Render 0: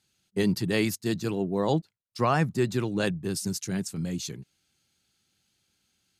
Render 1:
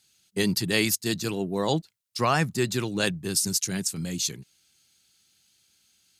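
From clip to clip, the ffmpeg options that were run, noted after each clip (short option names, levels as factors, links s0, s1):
-af "highshelf=f=2100:g=11.5,volume=0.891"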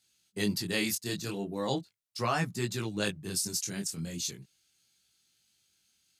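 -af "flanger=delay=17:depth=7.8:speed=0.39,volume=0.668"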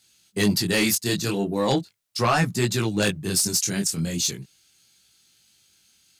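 -af "aeval=exprs='0.2*sin(PI/2*2.24*val(0)/0.2)':c=same"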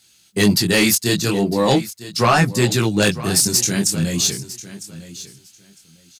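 -af "aecho=1:1:954|1908:0.158|0.0269,volume=2"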